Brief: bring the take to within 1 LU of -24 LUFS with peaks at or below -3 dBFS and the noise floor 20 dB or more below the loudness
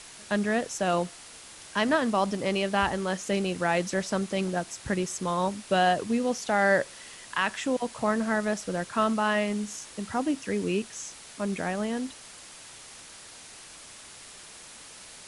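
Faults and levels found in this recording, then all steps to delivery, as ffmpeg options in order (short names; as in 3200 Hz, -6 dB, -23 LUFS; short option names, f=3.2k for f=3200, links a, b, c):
noise floor -47 dBFS; noise floor target -48 dBFS; loudness -28.0 LUFS; peak -11.0 dBFS; loudness target -24.0 LUFS
-> -af "afftdn=nr=6:nf=-47"
-af "volume=4dB"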